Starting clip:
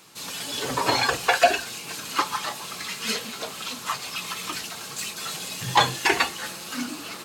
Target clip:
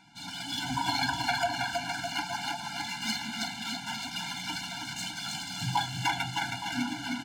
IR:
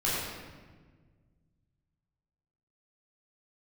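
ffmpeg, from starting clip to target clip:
-filter_complex "[0:a]acompressor=threshold=-24dB:ratio=6,asplit=2[a][b];[b]aecho=0:1:320|608|867.2|1100|1310:0.631|0.398|0.251|0.158|0.1[c];[a][c]amix=inputs=2:normalize=0,adynamicsmooth=sensitivity=5:basefreq=3.9k,afftfilt=real='re*eq(mod(floor(b*sr/1024/340),2),0)':imag='im*eq(mod(floor(b*sr/1024/340),2),0)':win_size=1024:overlap=0.75"

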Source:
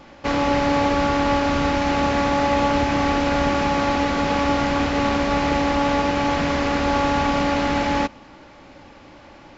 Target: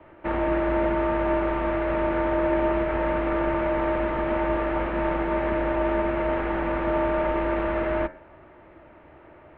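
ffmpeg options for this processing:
-filter_complex "[0:a]acrossover=split=310 2300:gain=0.0794 1 0.126[a][b][c];[a][b][c]amix=inputs=3:normalize=0,bandreject=f=86.18:t=h:w=4,bandreject=f=172.36:t=h:w=4,bandreject=f=258.54:t=h:w=4,bandreject=f=344.72:t=h:w=4,bandreject=f=430.9:t=h:w=4,bandreject=f=517.08:t=h:w=4,bandreject=f=603.26:t=h:w=4,bandreject=f=689.44:t=h:w=4,bandreject=f=775.62:t=h:w=4,bandreject=f=861.8:t=h:w=4,bandreject=f=947.98:t=h:w=4,bandreject=f=1.03416k:t=h:w=4,bandreject=f=1.12034k:t=h:w=4,bandreject=f=1.20652k:t=h:w=4,bandreject=f=1.2927k:t=h:w=4,bandreject=f=1.37888k:t=h:w=4,bandreject=f=1.46506k:t=h:w=4,bandreject=f=1.55124k:t=h:w=4,bandreject=f=1.63742k:t=h:w=4,bandreject=f=1.7236k:t=h:w=4,bandreject=f=1.80978k:t=h:w=4,bandreject=f=1.89596k:t=h:w=4,bandreject=f=1.98214k:t=h:w=4,bandreject=f=2.06832k:t=h:w=4,bandreject=f=2.1545k:t=h:w=4,bandreject=f=2.24068k:t=h:w=4,bandreject=f=2.32686k:t=h:w=4,bandreject=f=2.41304k:t=h:w=4,bandreject=f=2.49922k:t=h:w=4,highpass=f=190:t=q:w=0.5412,highpass=f=190:t=q:w=1.307,lowpass=f=3.5k:t=q:w=0.5176,lowpass=f=3.5k:t=q:w=0.7071,lowpass=f=3.5k:t=q:w=1.932,afreqshift=-230,volume=-1.5dB"

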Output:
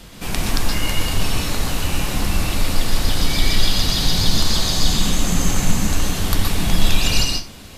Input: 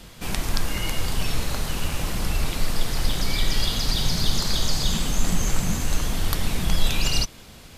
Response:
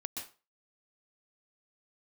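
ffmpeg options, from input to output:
-filter_complex "[1:a]atrim=start_sample=2205[a];[0:a][a]afir=irnorm=-1:irlink=0,volume=6dB"

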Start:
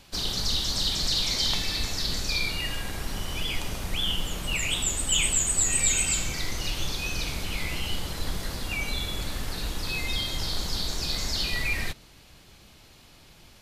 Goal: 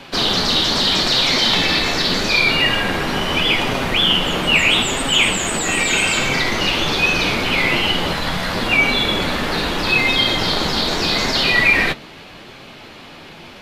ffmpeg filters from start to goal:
-filter_complex "[0:a]asettb=1/sr,asplit=3[a][b][c];[a]atrim=end=8.134[d];[b]atrim=start=8.13:end=8.54,asetpts=PTS-STARTPTS,afade=t=in:d=0.004:c=qsin,afade=t=out:st=0.406:d=0.004:c=qsin,equalizer=f=360:w=1.9:g=-12[e];[c]atrim=start=8.536[f];[d][e]acrossfade=d=0.004:c1=hsin:c2=qsin[g];[g][f]acrossfade=d=0.004:c1=qsin:c2=hsin,apsyclip=23.5dB,acrossover=split=160 3700:gain=0.158 1 0.141[h][i][j];[h][i][j]amix=inputs=3:normalize=0,flanger=delay=7.4:depth=5.6:regen=-32:speed=0.79:shape=sinusoidal,volume=-1dB"

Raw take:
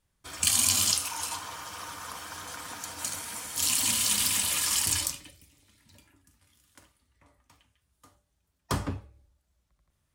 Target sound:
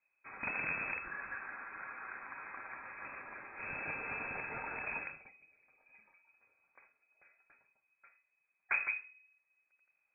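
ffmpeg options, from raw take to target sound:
-af "aeval=exprs='(tanh(5.01*val(0)+0.75)-tanh(0.75))/5.01':c=same,lowpass=f=2.2k:t=q:w=0.5098,lowpass=f=2.2k:t=q:w=0.6013,lowpass=f=2.2k:t=q:w=0.9,lowpass=f=2.2k:t=q:w=2.563,afreqshift=-2600,acontrast=90,volume=-7dB"

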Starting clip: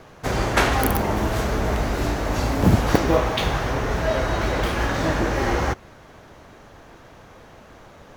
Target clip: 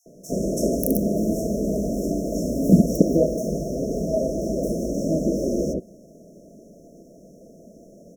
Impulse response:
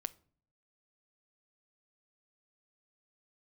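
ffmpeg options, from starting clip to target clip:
-filter_complex "[0:a]lowshelf=f=140:t=q:w=3:g=-9,acrossover=split=2800[a][b];[a]adelay=60[c];[c][b]amix=inputs=2:normalize=0,afftfilt=real='re*(1-between(b*sr/4096,690,5300))':imag='im*(1-between(b*sr/4096,690,5300))':win_size=4096:overlap=0.75"

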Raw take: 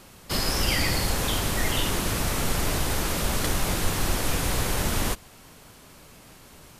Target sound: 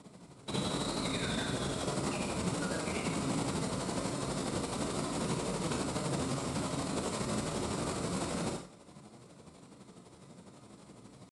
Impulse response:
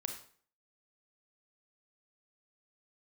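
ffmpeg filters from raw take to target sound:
-filter_complex "[0:a]tremolo=f=20:d=0.79,asetrate=33957,aresample=44100,equalizer=f=3.3k:w=0.68:g=-12.5,atempo=0.78,acrossover=split=500|5700[a][b][c];[a]asoftclip=type=tanh:threshold=-26.5dB[d];[d][b][c]amix=inputs=3:normalize=0[e];[1:a]atrim=start_sample=2205,afade=t=out:st=0.2:d=0.01,atrim=end_sample=9261[f];[e][f]afir=irnorm=-1:irlink=0,alimiter=level_in=1dB:limit=-24dB:level=0:latency=1:release=19,volume=-1dB,highpass=140,equalizer=f=180:t=q:w=4:g=6,equalizer=f=820:t=q:w=4:g=-4,equalizer=f=1.7k:t=q:w=4:g=-8,equalizer=f=3.9k:t=q:w=4:g=5,equalizer=f=6.3k:t=q:w=4:g=-8,lowpass=f=8.4k:w=0.5412,lowpass=f=8.4k:w=1.3066,volume=3.5dB"

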